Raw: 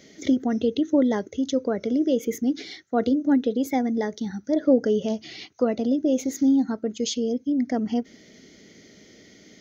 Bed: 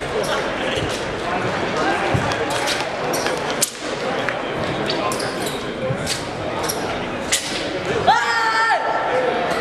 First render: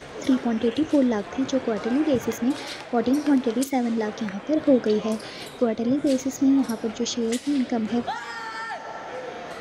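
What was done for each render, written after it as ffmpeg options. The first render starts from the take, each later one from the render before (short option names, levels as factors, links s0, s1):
-filter_complex "[1:a]volume=0.168[s0];[0:a][s0]amix=inputs=2:normalize=0"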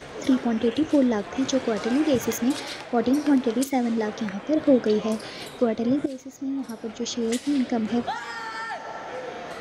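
-filter_complex "[0:a]asettb=1/sr,asplit=3[s0][s1][s2];[s0]atrim=end=1.364[s3];[s1]atrim=start=1.36:end=2.6,asetpts=PTS-STARTPTS,afade=t=in:d=0.004:c=qsin,afade=t=out:st=1.236:d=0.004:c=qsin,highshelf=f=3300:g=8[s4];[s2]atrim=start=2.596[s5];[s3][s4]acrossfade=d=0.004:c1=hsin:c2=qsin[s6];[s6][s5]acrossfade=d=0.004:c1=qsin:c2=hsin,asplit=2[s7][s8];[s7]atrim=end=6.06,asetpts=PTS-STARTPTS,afade=t=out:st=6.056:d=0.004:c=hsin:silence=0.211349[s9];[s8]atrim=start=6.06,asetpts=PTS-STARTPTS,afade=t=in:d=1.25:c=qua:silence=0.211349[s10];[s9][s10]concat=n=2:v=0:a=1"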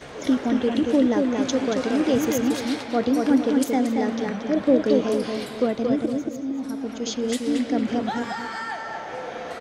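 -filter_complex "[0:a]asplit=2[s0][s1];[s1]adelay=229,lowpass=f=3100:p=1,volume=0.668,asplit=2[s2][s3];[s3]adelay=229,lowpass=f=3100:p=1,volume=0.37,asplit=2[s4][s5];[s5]adelay=229,lowpass=f=3100:p=1,volume=0.37,asplit=2[s6][s7];[s7]adelay=229,lowpass=f=3100:p=1,volume=0.37,asplit=2[s8][s9];[s9]adelay=229,lowpass=f=3100:p=1,volume=0.37[s10];[s0][s2][s4][s6][s8][s10]amix=inputs=6:normalize=0"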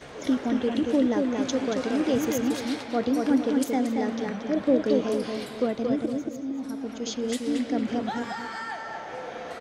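-af "volume=0.668"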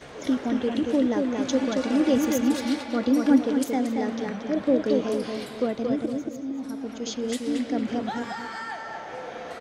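-filter_complex "[0:a]asettb=1/sr,asplit=3[s0][s1][s2];[s0]atrim=end=1.504[s3];[s1]atrim=start=1.5:end=3.39,asetpts=PTS-STARTPTS,afade=t=in:d=0.004:c=qsin,afade=t=out:st=1.886:d=0.004:c=qsin,aecho=1:1:3.5:0.65,atrim=end_sample=83349[s4];[s2]atrim=start=3.386[s5];[s3][s4]acrossfade=d=0.004:c1=hsin:c2=qsin[s6];[s6][s5]acrossfade=d=0.004:c1=qsin:c2=hsin"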